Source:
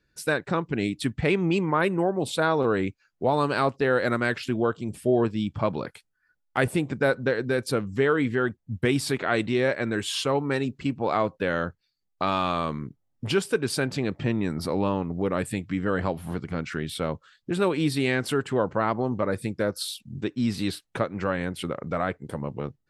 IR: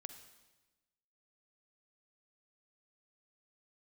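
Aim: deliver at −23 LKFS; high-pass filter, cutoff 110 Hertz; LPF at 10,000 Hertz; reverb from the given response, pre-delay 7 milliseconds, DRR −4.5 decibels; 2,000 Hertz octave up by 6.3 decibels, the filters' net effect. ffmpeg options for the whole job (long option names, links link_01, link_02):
-filter_complex "[0:a]highpass=110,lowpass=10000,equalizer=frequency=2000:width_type=o:gain=8.5,asplit=2[link_01][link_02];[1:a]atrim=start_sample=2205,adelay=7[link_03];[link_02][link_03]afir=irnorm=-1:irlink=0,volume=9.5dB[link_04];[link_01][link_04]amix=inputs=2:normalize=0,volume=-4dB"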